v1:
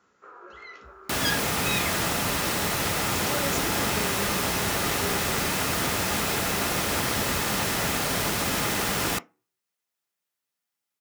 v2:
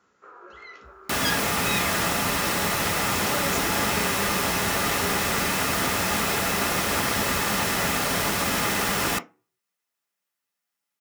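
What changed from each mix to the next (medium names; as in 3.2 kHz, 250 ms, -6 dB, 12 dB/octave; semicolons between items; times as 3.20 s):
second sound: send +7.0 dB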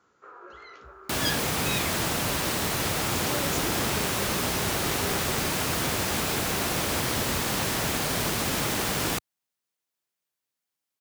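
reverb: off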